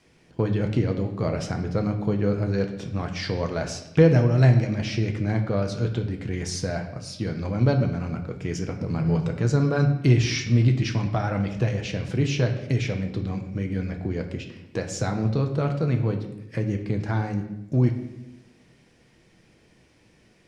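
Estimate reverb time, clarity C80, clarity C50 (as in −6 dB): 0.90 s, 11.0 dB, 9.0 dB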